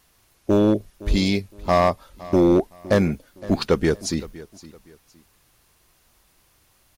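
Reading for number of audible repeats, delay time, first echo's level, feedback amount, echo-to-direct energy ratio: 2, 0.514 s, -19.0 dB, 29%, -18.5 dB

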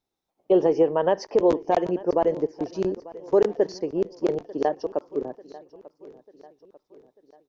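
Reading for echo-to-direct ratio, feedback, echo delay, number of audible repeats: -18.5 dB, 49%, 0.893 s, 3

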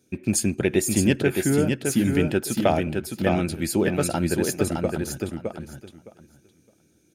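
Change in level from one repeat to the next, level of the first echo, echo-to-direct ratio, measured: -15.5 dB, -4.5 dB, -4.5 dB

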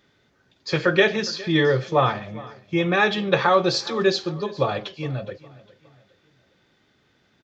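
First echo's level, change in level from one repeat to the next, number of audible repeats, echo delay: -20.0 dB, -7.5 dB, 2, 0.411 s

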